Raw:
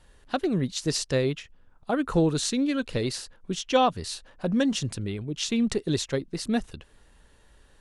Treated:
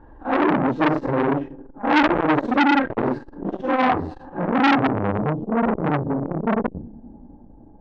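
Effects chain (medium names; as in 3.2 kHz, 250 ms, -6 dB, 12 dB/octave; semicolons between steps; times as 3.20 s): phase randomisation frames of 200 ms; bass shelf 370 Hz +7 dB; in parallel at -0.5 dB: compressor with a negative ratio -23 dBFS, ratio -0.5; on the sum: overload inside the chain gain 12.5 dB; low-pass sweep 1.1 kHz -> 190 Hz, 4.40–5.07 s; band noise 160–740 Hz -55 dBFS; small resonant body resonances 300/850/1600 Hz, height 15 dB, ringing for 60 ms; on a send: tape echo 191 ms, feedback 78%, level -21.5 dB, low-pass 1 kHz; on the sum: transformer saturation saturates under 1.7 kHz; trim -3.5 dB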